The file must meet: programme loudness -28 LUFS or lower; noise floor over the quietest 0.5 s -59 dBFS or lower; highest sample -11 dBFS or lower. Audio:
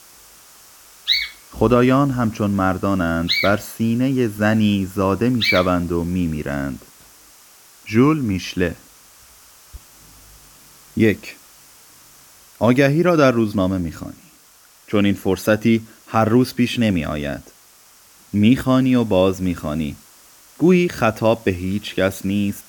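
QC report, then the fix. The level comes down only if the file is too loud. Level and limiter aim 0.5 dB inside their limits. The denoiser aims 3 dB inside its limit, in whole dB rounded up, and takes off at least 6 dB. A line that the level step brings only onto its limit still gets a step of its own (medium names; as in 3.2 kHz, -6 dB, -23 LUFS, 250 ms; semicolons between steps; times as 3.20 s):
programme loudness -18.5 LUFS: fail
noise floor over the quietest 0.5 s -50 dBFS: fail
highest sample -2.5 dBFS: fail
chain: trim -10 dB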